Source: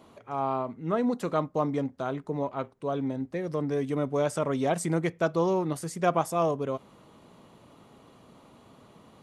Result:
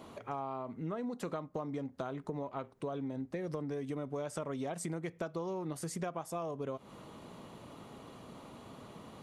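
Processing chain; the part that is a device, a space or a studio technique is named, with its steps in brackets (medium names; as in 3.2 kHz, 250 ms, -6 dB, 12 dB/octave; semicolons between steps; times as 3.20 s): serial compression, peaks first (compression, threshold -33 dBFS, peak gain reduction 13.5 dB; compression 2:1, threshold -43 dBFS, peak gain reduction 7 dB); trim +3.5 dB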